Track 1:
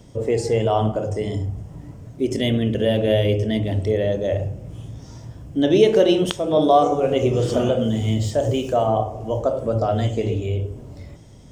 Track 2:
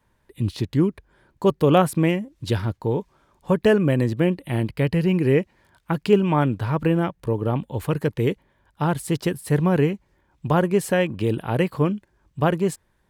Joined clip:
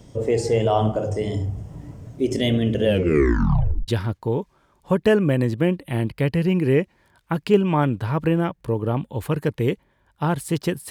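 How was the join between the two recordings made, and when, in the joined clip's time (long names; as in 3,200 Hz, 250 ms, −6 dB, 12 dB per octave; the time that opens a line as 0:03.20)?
track 1
0:02.84: tape stop 1.04 s
0:03.88: continue with track 2 from 0:02.47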